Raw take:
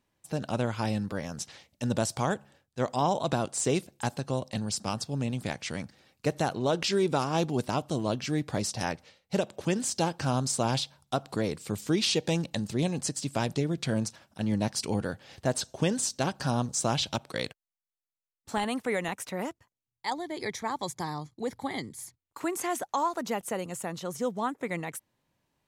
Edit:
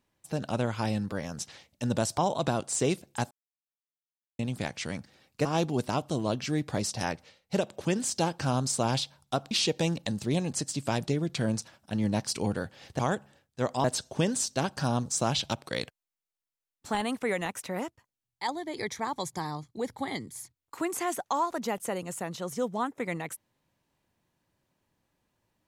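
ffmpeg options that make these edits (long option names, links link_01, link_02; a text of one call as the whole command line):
ffmpeg -i in.wav -filter_complex "[0:a]asplit=8[link_01][link_02][link_03][link_04][link_05][link_06][link_07][link_08];[link_01]atrim=end=2.182[link_09];[link_02]atrim=start=3.028:end=4.16,asetpts=PTS-STARTPTS,afade=type=out:start_time=1.128:duration=0.004:curve=hsin[link_10];[link_03]atrim=start=4.16:end=5.24,asetpts=PTS-STARTPTS,volume=0[link_11];[link_04]atrim=start=5.24:end=6.302,asetpts=PTS-STARTPTS,afade=type=in:duration=0.004:curve=hsin[link_12];[link_05]atrim=start=7.248:end=11.312[link_13];[link_06]atrim=start=11.988:end=15.472[link_14];[link_07]atrim=start=2.178:end=3.032[link_15];[link_08]atrim=start=15.468[link_16];[link_10][link_11][link_12]concat=n=3:v=0:a=1[link_17];[link_09][link_17]acrossfade=duration=0.004:curve1=hsin:curve2=hsin[link_18];[link_18][link_13]acrossfade=duration=0.004:curve1=hsin:curve2=hsin[link_19];[link_19][link_14]acrossfade=duration=0.004:curve1=hsin:curve2=hsin[link_20];[link_20][link_15]acrossfade=duration=0.004:curve1=hsin:curve2=hsin[link_21];[link_21][link_16]acrossfade=duration=0.004:curve1=hsin:curve2=hsin" out.wav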